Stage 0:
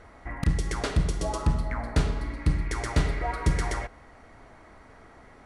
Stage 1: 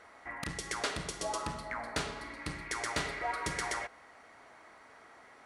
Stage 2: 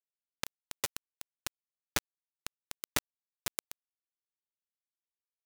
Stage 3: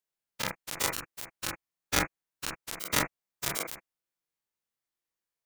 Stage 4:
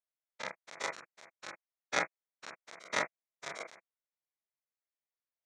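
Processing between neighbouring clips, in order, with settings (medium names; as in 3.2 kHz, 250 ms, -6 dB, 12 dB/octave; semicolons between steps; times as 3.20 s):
high-pass 890 Hz 6 dB/octave
bit crusher 4-bit; trim +4 dB
every event in the spectrogram widened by 60 ms; on a send at -1 dB: reverberation, pre-delay 41 ms
cabinet simulation 280–5900 Hz, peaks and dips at 300 Hz -7 dB, 630 Hz +5 dB, 2.1 kHz +4 dB, 2.9 kHz -9 dB, 4.8 kHz -7 dB; upward expansion 1.5:1, over -39 dBFS; trim -1.5 dB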